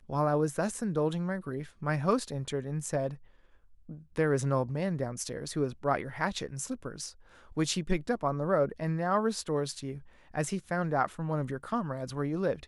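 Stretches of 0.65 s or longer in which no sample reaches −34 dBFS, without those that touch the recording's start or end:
0:03.14–0:03.91

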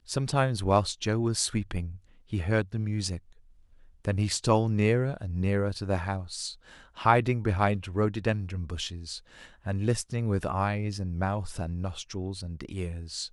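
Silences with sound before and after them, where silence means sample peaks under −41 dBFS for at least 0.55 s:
0:03.18–0:04.05

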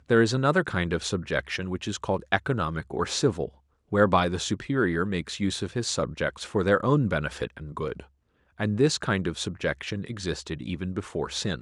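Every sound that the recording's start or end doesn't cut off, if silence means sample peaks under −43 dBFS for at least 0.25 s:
0:03.92–0:08.04

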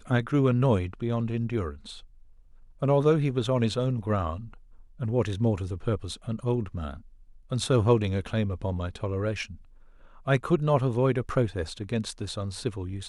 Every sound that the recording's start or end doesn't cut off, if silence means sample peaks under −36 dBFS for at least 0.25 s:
0:02.82–0:04.53
0:05.00–0:06.98
0:07.52–0:09.55

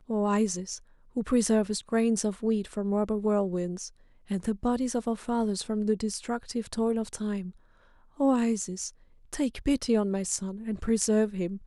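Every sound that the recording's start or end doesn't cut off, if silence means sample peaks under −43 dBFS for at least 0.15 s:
0:01.16–0:03.89
0:04.30–0:07.51
0:08.19–0:08.90

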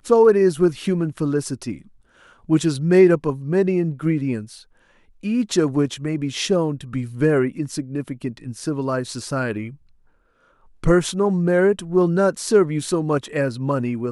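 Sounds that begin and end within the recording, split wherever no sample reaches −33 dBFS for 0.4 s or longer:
0:02.49–0:04.57
0:05.24–0:09.70

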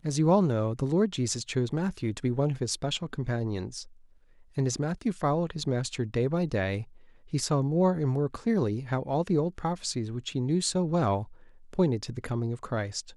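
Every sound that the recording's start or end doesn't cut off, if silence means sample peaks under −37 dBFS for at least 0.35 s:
0:04.57–0:06.83
0:07.33–0:11.24

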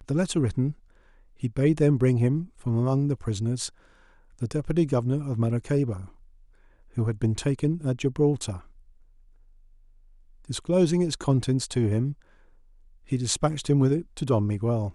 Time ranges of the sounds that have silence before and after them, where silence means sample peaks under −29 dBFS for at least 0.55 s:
0:01.43–0:03.68
0:04.42–0:06.01
0:06.97–0:08.56
0:10.50–0:12.12

